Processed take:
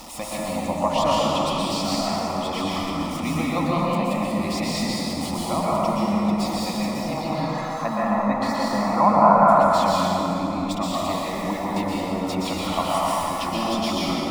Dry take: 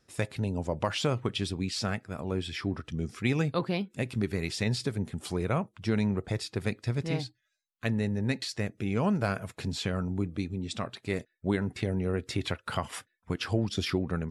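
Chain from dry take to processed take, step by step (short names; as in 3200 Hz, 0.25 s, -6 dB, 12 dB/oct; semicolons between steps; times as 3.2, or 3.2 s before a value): zero-crossing step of -33 dBFS; 7.17–9.7 EQ curve 310 Hz 0 dB, 1500 Hz +12 dB, 2500 Hz -5 dB; spectral gate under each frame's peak -30 dB strong; bell 1100 Hz +12 dB 1.7 oct; fixed phaser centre 420 Hz, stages 6; plate-style reverb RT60 3.4 s, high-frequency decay 0.6×, pre-delay 0.11 s, DRR -7 dB; gain -1.5 dB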